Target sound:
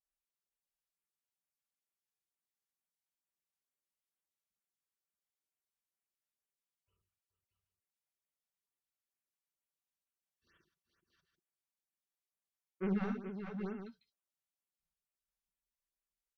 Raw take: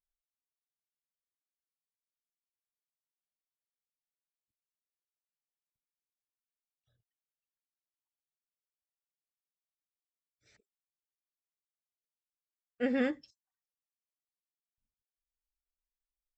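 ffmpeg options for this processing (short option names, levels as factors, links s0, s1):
-af "highpass=43,equalizer=f=5500:t=o:w=0.4:g=-2.5,aecho=1:1:4:0.46,asetrate=34006,aresample=44100,atempo=1.29684,asoftclip=type=tanh:threshold=0.0531,aecho=1:1:51|71|167|426|631|780:0.335|0.422|0.178|0.376|0.531|0.237,afftfilt=real='re*(1-between(b*sr/1024,270*pow(5000/270,0.5+0.5*sin(2*PI*2.2*pts/sr))/1.41,270*pow(5000/270,0.5+0.5*sin(2*PI*2.2*pts/sr))*1.41))':imag='im*(1-between(b*sr/1024,270*pow(5000/270,0.5+0.5*sin(2*PI*2.2*pts/sr))/1.41,270*pow(5000/270,0.5+0.5*sin(2*PI*2.2*pts/sr))*1.41))':win_size=1024:overlap=0.75,volume=0.596"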